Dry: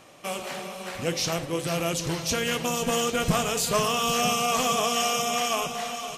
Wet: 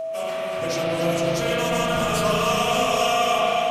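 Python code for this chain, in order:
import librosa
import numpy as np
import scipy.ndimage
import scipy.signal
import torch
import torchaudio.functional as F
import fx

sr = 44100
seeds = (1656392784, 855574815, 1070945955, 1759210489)

y = fx.hum_notches(x, sr, base_hz=60, count=6)
y = fx.stretch_vocoder_free(y, sr, factor=0.6)
y = fx.rev_spring(y, sr, rt60_s=3.0, pass_ms=(35, 54), chirp_ms=45, drr_db=-7.0)
y = y + 10.0 ** (-26.0 / 20.0) * np.sin(2.0 * np.pi * 650.0 * np.arange(len(y)) / sr)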